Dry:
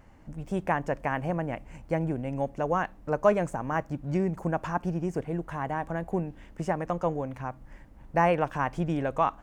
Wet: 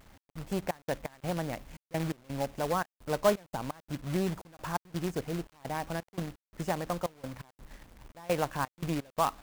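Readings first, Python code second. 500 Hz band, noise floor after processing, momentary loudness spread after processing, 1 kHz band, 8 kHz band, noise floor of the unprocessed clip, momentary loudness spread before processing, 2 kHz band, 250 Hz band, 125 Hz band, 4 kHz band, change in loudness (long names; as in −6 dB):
−4.5 dB, below −85 dBFS, 14 LU, −5.5 dB, +8.5 dB, −52 dBFS, 11 LU, −5.5 dB, −5.0 dB, −5.0 dB, can't be measured, −4.5 dB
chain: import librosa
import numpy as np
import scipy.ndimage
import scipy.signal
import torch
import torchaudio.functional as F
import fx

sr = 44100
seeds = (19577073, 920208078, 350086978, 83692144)

y = fx.step_gate(x, sr, bpm=85, pattern='x.xx.x.xxx.x.xx', floor_db=-24.0, edge_ms=4.5)
y = fx.quant_companded(y, sr, bits=4)
y = y * librosa.db_to_amplitude(-3.5)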